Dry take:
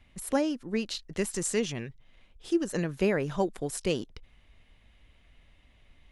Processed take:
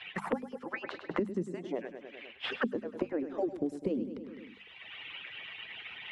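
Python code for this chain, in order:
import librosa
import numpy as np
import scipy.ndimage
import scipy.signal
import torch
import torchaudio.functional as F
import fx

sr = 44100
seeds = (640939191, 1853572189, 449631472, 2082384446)

y = fx.hpss_only(x, sr, part='percussive')
y = fx.high_shelf(y, sr, hz=6000.0, db=-4.0)
y = fx.auto_wah(y, sr, base_hz=250.0, top_hz=3200.0, q=2.6, full_db=-33.0, direction='down')
y = fx.hum_notches(y, sr, base_hz=50, count=5)
y = fx.echo_feedback(y, sr, ms=101, feedback_pct=52, wet_db=-12.0)
y = fx.band_squash(y, sr, depth_pct=100)
y = y * 10.0 ** (9.0 / 20.0)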